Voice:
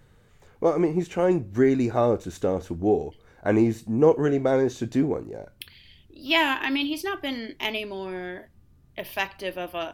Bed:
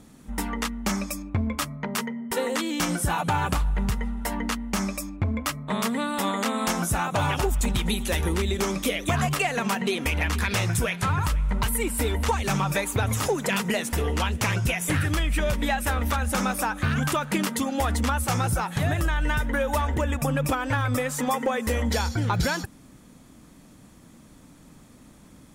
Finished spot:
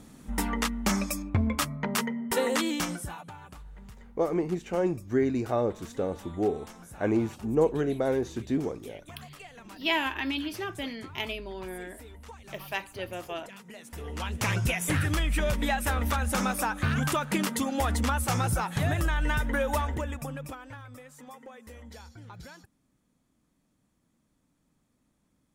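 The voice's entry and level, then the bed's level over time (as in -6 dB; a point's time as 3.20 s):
3.55 s, -5.5 dB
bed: 2.68 s 0 dB
3.37 s -22.5 dB
13.66 s -22.5 dB
14.49 s -2.5 dB
19.73 s -2.5 dB
20.91 s -22 dB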